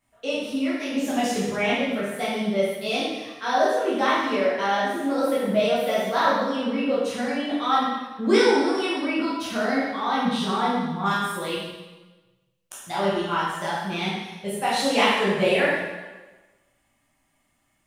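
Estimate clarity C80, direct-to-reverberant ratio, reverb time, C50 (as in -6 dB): 1.5 dB, -9.5 dB, 1.2 s, -1.0 dB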